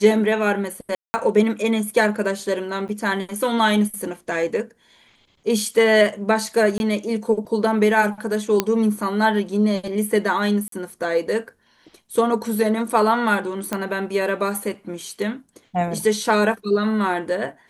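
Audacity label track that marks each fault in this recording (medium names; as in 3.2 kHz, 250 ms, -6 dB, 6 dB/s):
0.950000	1.140000	dropout 190 ms
2.880000	2.890000	dropout 7 ms
6.780000	6.800000	dropout 21 ms
8.600000	8.600000	pop -3 dBFS
10.680000	10.720000	dropout 43 ms
13.730000	13.730000	pop -9 dBFS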